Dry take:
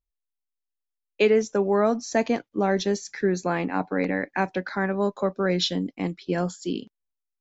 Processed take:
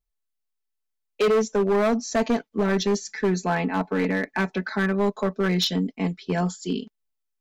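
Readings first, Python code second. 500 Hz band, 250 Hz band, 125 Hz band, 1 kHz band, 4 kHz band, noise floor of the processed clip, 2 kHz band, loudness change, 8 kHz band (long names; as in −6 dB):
0.0 dB, +2.0 dB, +3.5 dB, 0.0 dB, +1.5 dB, −79 dBFS, +1.5 dB, +1.0 dB, can't be measured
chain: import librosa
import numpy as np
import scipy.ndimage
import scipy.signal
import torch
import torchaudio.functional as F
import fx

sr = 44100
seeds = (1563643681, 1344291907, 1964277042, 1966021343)

y = x + 0.84 * np.pad(x, (int(4.6 * sr / 1000.0), 0))[:len(x)]
y = np.clip(y, -10.0 ** (-17.0 / 20.0), 10.0 ** (-17.0 / 20.0))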